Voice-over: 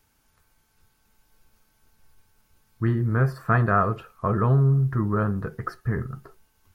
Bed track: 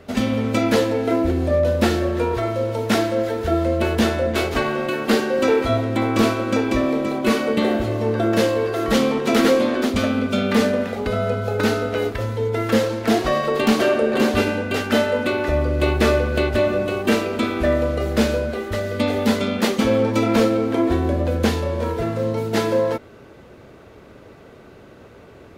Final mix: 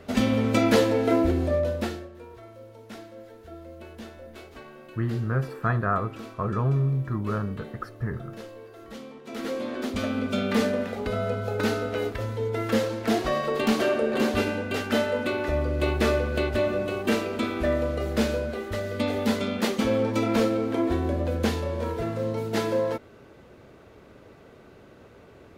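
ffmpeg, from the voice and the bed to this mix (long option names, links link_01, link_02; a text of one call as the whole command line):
ffmpeg -i stem1.wav -i stem2.wav -filter_complex "[0:a]adelay=2150,volume=-4.5dB[link_01];[1:a]volume=15.5dB,afade=type=out:start_time=1.19:duration=0.9:silence=0.0841395,afade=type=in:start_time=9.24:duration=1.06:silence=0.133352[link_02];[link_01][link_02]amix=inputs=2:normalize=0" out.wav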